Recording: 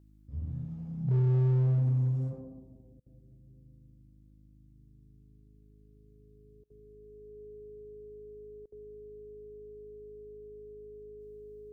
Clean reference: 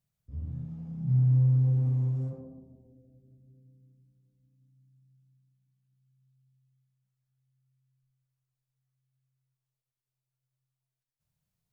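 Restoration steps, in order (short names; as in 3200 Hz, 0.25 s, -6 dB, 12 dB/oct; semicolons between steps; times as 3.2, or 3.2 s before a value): clip repair -23 dBFS; de-hum 52.1 Hz, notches 6; notch 420 Hz, Q 30; interpolate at 3/6.64/8.66, 60 ms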